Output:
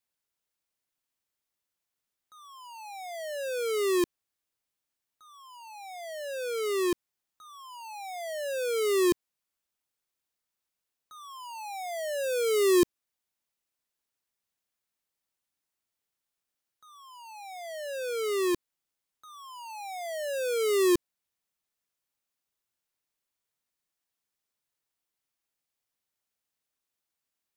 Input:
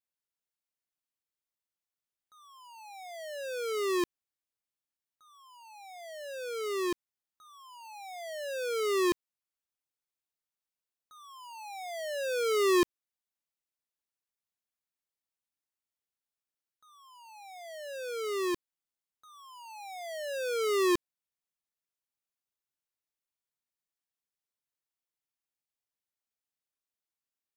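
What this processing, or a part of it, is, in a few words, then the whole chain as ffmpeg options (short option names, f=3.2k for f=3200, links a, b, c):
one-band saturation: -filter_complex "[0:a]acrossover=split=420|4700[a][b][c];[b]asoftclip=type=tanh:threshold=-38dB[d];[a][d][c]amix=inputs=3:normalize=0,volume=6dB"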